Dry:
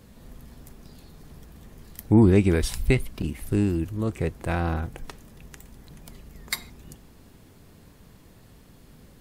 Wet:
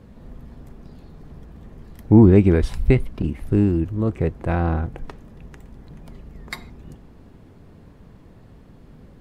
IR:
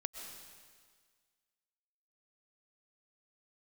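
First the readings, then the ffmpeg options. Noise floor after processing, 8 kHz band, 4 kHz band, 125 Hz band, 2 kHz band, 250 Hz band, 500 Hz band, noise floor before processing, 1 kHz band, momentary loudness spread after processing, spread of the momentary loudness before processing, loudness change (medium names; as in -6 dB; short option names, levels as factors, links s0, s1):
-47 dBFS, under -10 dB, no reading, +5.5 dB, -0.5 dB, +5.0 dB, +5.0 dB, -52 dBFS, +3.5 dB, 21 LU, 15 LU, +5.5 dB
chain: -af "lowpass=f=1100:p=1,volume=1.88"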